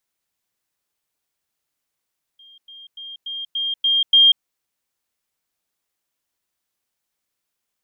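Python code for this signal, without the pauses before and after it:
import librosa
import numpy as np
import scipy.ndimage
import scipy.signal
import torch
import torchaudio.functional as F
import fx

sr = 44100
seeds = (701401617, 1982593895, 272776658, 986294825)

y = fx.level_ladder(sr, hz=3210.0, from_db=-44.5, step_db=6.0, steps=7, dwell_s=0.19, gap_s=0.1)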